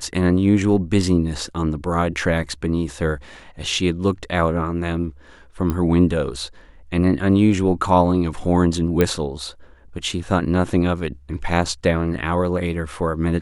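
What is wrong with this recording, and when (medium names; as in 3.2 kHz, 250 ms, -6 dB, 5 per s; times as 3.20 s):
5.70 s: pop -11 dBFS
9.01 s: pop -5 dBFS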